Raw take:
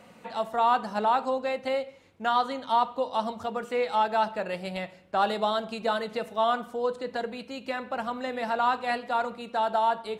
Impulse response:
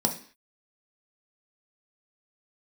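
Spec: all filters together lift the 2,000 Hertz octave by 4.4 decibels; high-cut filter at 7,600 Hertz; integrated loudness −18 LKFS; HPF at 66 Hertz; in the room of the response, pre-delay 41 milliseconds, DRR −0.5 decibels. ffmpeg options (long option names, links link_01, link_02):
-filter_complex "[0:a]highpass=66,lowpass=7600,equalizer=frequency=2000:width_type=o:gain=6,asplit=2[link_01][link_02];[1:a]atrim=start_sample=2205,adelay=41[link_03];[link_02][link_03]afir=irnorm=-1:irlink=0,volume=-9dB[link_04];[link_01][link_04]amix=inputs=2:normalize=0,volume=3.5dB"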